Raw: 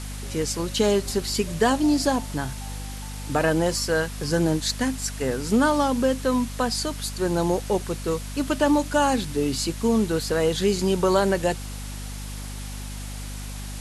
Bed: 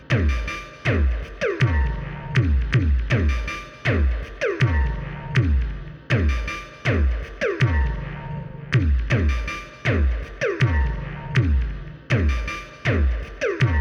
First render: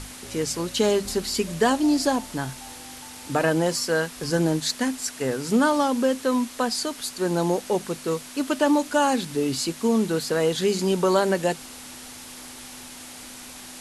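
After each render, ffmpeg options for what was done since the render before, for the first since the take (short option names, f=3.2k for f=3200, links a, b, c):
-af "bandreject=f=50:t=h:w=6,bandreject=f=100:t=h:w=6,bandreject=f=150:t=h:w=6,bandreject=f=200:t=h:w=6"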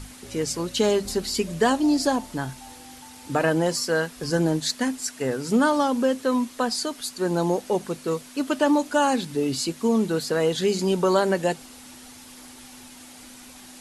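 -af "afftdn=nr=6:nf=-41"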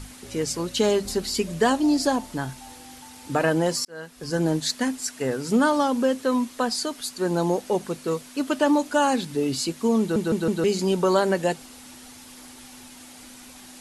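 -filter_complex "[0:a]asplit=6[a][b][c][d][e][f];[a]atrim=end=3.85,asetpts=PTS-STARTPTS,afade=t=out:st=3.846:d=0.004:c=hsin[g];[b]atrim=start=3.85:end=10.162,asetpts=PTS-STARTPTS,afade=t=in:d=0.66[h];[c]atrim=start=9.998:end=10.162[i];[d]atrim=start=9.998:end=10.162[j];[e]atrim=start=9.998:end=10.162[k];[f]atrim=start=10.638[l];[g][h]concat=n=2:v=0:a=1[m];[m][i]acrossfade=d=0.004:c1=hsin:c2=hsin[n];[n][j]acrossfade=d=0.004:c1=hsin:c2=hsin[o];[o][k]acrossfade=d=0.004:c1=hsin:c2=hsin[p];[p][l]acrossfade=d=0.004:c1=hsin:c2=hsin"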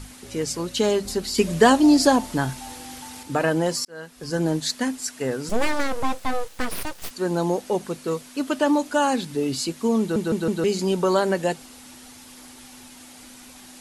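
-filter_complex "[0:a]asettb=1/sr,asplit=3[a][b][c];[a]atrim=end=5.494[d];[b]atrim=start=5.49:end=7.11,asetpts=PTS-STARTPTS,afade=t=in:d=0.004:c=qsin,afade=t=out:st=1.616:d=0.004:c=qsin,aeval=exprs='abs(val(0))':c=same[e];[c]atrim=start=7.106[f];[d][e]acrossfade=d=0.004:c1=hsin:c2=qsin[g];[g][f]acrossfade=d=0.004:c1=qsin:c2=hsin,asplit=3[h][i][j];[h]atrim=end=1.382[k];[i]atrim=start=1.378:end=3.232,asetpts=PTS-STARTPTS,volume=5.5dB[l];[j]atrim=start=3.228[m];[k][l]acrossfade=d=0.004:c1=hsin:c2=hsin[n];[n][m]acrossfade=d=0.004:c1=hsin:c2=hsin"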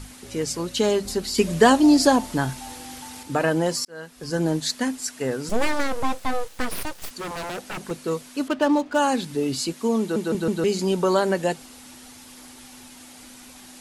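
-filter_complex "[0:a]asettb=1/sr,asplit=3[a][b][c];[a]atrim=end=7.054[d];[b]atrim=start=7.05:end=7.91,asetpts=PTS-STARTPTS,afade=t=in:d=0.004:c=qsin,afade=t=out:st=0.856:d=0.004:c=qsin,aeval=exprs='0.0501*(abs(mod(val(0)/0.0501+3,4)-2)-1)':c=same[e];[c]atrim=start=7.906[f];[d][e]acrossfade=d=0.004:c1=hsin:c2=qsin[g];[g][f]acrossfade=d=0.004:c1=qsin:c2=hsin,asettb=1/sr,asplit=3[h][i][j];[h]atrim=end=8.484[k];[i]atrim=start=8.48:end=8.99,asetpts=PTS-STARTPTS,afade=t=in:d=0.004:c=qsin,afade=t=out:st=0.506:d=0.004:c=qsin,adynamicsmooth=sensitivity=7:basefreq=1.9k[l];[j]atrim=start=8.986[m];[k][l]acrossfade=d=0.004:c1=hsin:c2=qsin[n];[n][m]acrossfade=d=0.004:c1=qsin:c2=hsin,asettb=1/sr,asplit=3[o][p][q];[o]atrim=end=9.734[r];[p]atrim=start=9.73:end=10.35,asetpts=PTS-STARTPTS,afade=t=in:d=0.004:c=qsin,afade=t=out:st=0.616:d=0.004:c=qsin,highpass=190[s];[q]atrim=start=10.346[t];[r][s]acrossfade=d=0.004:c1=hsin:c2=qsin[u];[u][t]acrossfade=d=0.004:c1=qsin:c2=hsin"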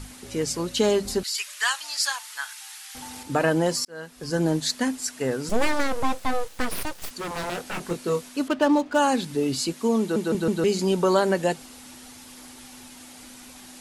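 -filter_complex "[0:a]asettb=1/sr,asplit=3[a][b][c];[a]atrim=end=1.234[d];[b]atrim=start=1.23:end=2.95,asetpts=PTS-STARTPTS,afade=t=in:d=0.004:c=qsin,afade=t=out:st=1.716:d=0.004:c=qsin,highpass=f=1.3k:w=0.5412,highpass=f=1.3k:w=1.3066[e];[c]atrim=start=2.946[f];[d][e]acrossfade=d=0.004:c1=hsin:c2=qsin[g];[g][f]acrossfade=d=0.004:c1=qsin:c2=hsin,asettb=1/sr,asplit=3[h][i][j];[h]atrim=end=7.324[k];[i]atrim=start=7.32:end=8.29,asetpts=PTS-STARTPTS,afade=t=in:d=0.004:c=qsin,afade=t=out:st=0.966:d=0.004:c=qsin,asplit=2[l][m];[m]adelay=23,volume=-5dB[n];[l][n]amix=inputs=2:normalize=0,atrim=end_sample=42777[o];[j]atrim=start=8.286[p];[k][o]acrossfade=d=0.004:c1=hsin:c2=qsin[q];[q][p]acrossfade=d=0.004:c1=qsin:c2=hsin"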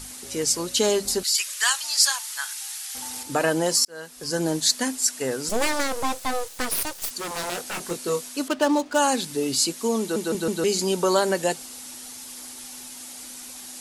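-af "bass=f=250:g=-6,treble=f=4k:g=9"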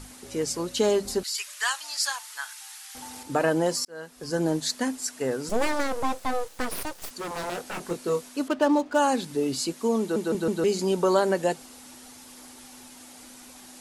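-af "highshelf=f=2.5k:g=-10.5"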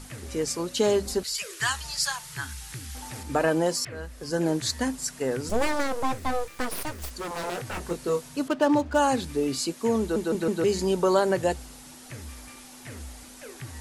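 -filter_complex "[1:a]volume=-21.5dB[a];[0:a][a]amix=inputs=2:normalize=0"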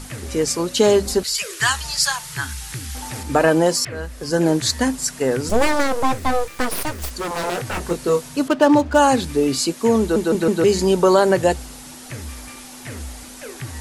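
-af "volume=8dB,alimiter=limit=-3dB:level=0:latency=1"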